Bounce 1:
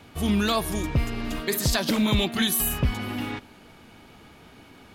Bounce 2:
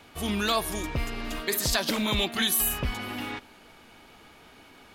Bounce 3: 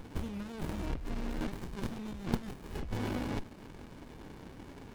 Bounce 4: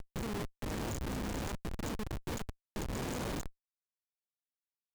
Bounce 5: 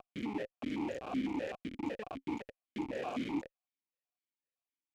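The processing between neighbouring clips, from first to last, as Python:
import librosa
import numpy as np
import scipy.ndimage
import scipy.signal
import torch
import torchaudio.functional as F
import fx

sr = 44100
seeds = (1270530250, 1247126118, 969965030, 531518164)

y1 = fx.peak_eq(x, sr, hz=120.0, db=-9.0, octaves=2.8)
y2 = fx.over_compress(y1, sr, threshold_db=-37.0, ratio=-1.0)
y2 = fx.running_max(y2, sr, window=65)
y2 = y2 * 10.0 ** (1.0 / 20.0)
y3 = y2 + 10.0 ** (-48.0 / 20.0) * np.sin(2.0 * np.pi * 6900.0 * np.arange(len(y2)) / sr)
y3 = fx.cheby_harmonics(y3, sr, harmonics=(3, 7, 8), levels_db=(-25, -21, -11), full_scale_db=-14.5)
y3 = fx.schmitt(y3, sr, flips_db=-45.5)
y3 = y3 * 10.0 ** (3.0 / 20.0)
y4 = fx.vowel_held(y3, sr, hz=7.9)
y4 = y4 * 10.0 ** (12.0 / 20.0)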